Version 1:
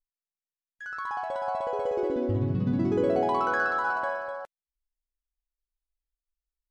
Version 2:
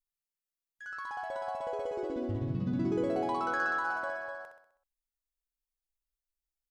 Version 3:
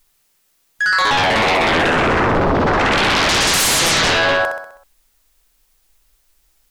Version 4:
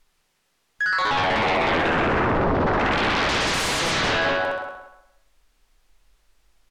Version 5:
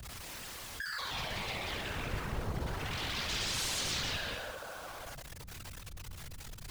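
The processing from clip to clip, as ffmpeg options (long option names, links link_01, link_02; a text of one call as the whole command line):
ffmpeg -i in.wav -filter_complex "[0:a]highshelf=frequency=5600:gain=7.5,asplit=2[link_01][link_02];[link_02]aecho=0:1:64|128|192|256|320|384:0.447|0.228|0.116|0.0593|0.0302|0.0154[link_03];[link_01][link_03]amix=inputs=2:normalize=0,volume=-6.5dB" out.wav
ffmpeg -i in.wav -af "aeval=exprs='0.1*sin(PI/2*8.91*val(0)/0.1)':channel_layout=same,volume=8dB" out.wav
ffmpeg -i in.wav -filter_complex "[0:a]aemphasis=mode=reproduction:type=50fm,alimiter=limit=-18dB:level=0:latency=1:release=180,asplit=2[link_01][link_02];[link_02]adelay=173,lowpass=frequency=4600:poles=1,volume=-8dB,asplit=2[link_03][link_04];[link_04]adelay=173,lowpass=frequency=4600:poles=1,volume=0.24,asplit=2[link_05][link_06];[link_06]adelay=173,lowpass=frequency=4600:poles=1,volume=0.24[link_07];[link_01][link_03][link_05][link_07]amix=inputs=4:normalize=0" out.wav
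ffmpeg -i in.wav -filter_complex "[0:a]aeval=exprs='val(0)+0.5*0.0299*sgn(val(0))':channel_layout=same,afftfilt=real='hypot(re,im)*cos(2*PI*random(0))':imag='hypot(re,im)*sin(2*PI*random(1))':win_size=512:overlap=0.75,acrossover=split=130|3000[link_01][link_02][link_03];[link_02]acompressor=threshold=-39dB:ratio=6[link_04];[link_01][link_04][link_03]amix=inputs=3:normalize=0,volume=-2.5dB" out.wav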